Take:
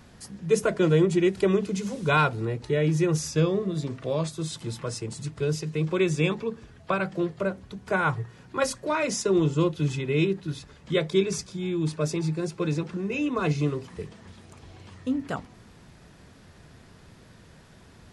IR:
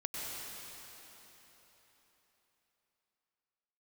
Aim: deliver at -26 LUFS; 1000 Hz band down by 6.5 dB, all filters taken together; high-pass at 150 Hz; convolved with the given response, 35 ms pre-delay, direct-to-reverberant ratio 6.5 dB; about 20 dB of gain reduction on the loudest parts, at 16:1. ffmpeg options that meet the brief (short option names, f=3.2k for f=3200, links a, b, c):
-filter_complex "[0:a]highpass=150,equalizer=f=1k:t=o:g=-9,acompressor=threshold=-38dB:ratio=16,asplit=2[a][b];[1:a]atrim=start_sample=2205,adelay=35[c];[b][c]afir=irnorm=-1:irlink=0,volume=-9.5dB[d];[a][d]amix=inputs=2:normalize=0,volume=16.5dB"